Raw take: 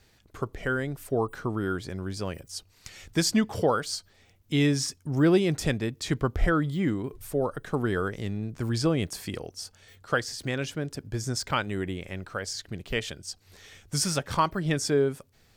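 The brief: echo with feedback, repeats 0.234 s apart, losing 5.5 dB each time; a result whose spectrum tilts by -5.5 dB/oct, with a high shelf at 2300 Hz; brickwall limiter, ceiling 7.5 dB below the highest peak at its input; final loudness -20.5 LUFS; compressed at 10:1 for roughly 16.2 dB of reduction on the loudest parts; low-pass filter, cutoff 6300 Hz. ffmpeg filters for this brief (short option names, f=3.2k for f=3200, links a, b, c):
-af "lowpass=6.3k,highshelf=f=2.3k:g=-7,acompressor=threshold=-33dB:ratio=10,alimiter=level_in=5.5dB:limit=-24dB:level=0:latency=1,volume=-5.5dB,aecho=1:1:234|468|702|936|1170|1404|1638:0.531|0.281|0.149|0.079|0.0419|0.0222|0.0118,volume=19dB"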